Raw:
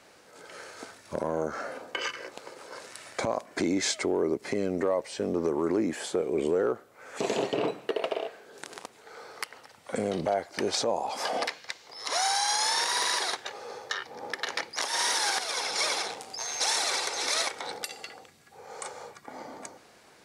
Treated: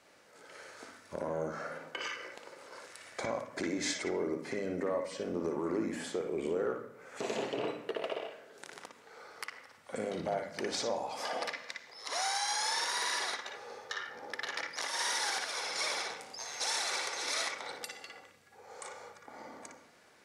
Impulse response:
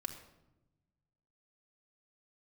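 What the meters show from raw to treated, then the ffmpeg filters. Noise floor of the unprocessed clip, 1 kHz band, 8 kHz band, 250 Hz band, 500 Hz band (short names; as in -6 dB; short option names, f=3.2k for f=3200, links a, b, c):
-56 dBFS, -6.5 dB, -7.0 dB, -7.0 dB, -6.5 dB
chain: -filter_complex "[0:a]bandreject=f=50:t=h:w=6,bandreject=f=100:t=h:w=6,bandreject=f=150:t=h:w=6,bandreject=f=200:t=h:w=6,bandreject=f=250:t=h:w=6,bandreject=f=300:t=h:w=6,asplit=2[a][b];[b]highpass=f=110:w=0.5412,highpass=f=110:w=1.3066,equalizer=f=360:t=q:w=4:g=-10,equalizer=f=750:t=q:w=4:g=-9,equalizer=f=1.4k:t=q:w=4:g=3,equalizer=f=2k:t=q:w=4:g=5,equalizer=f=4.3k:t=q:w=4:g=-8,lowpass=f=6.3k:w=0.5412,lowpass=f=6.3k:w=1.3066[c];[1:a]atrim=start_sample=2205,adelay=57[d];[c][d]afir=irnorm=-1:irlink=0,volume=-1dB[e];[a][e]amix=inputs=2:normalize=0,volume=-7.5dB"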